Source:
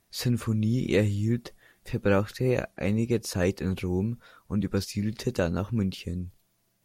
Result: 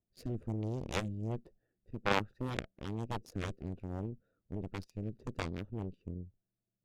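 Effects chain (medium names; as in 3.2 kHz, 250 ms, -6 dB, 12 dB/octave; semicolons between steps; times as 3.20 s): local Wiener filter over 41 samples; Chebyshev shaper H 2 -15 dB, 3 -8 dB, 6 -26 dB, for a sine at -10 dBFS; rotary cabinet horn 1.2 Hz; trim +2.5 dB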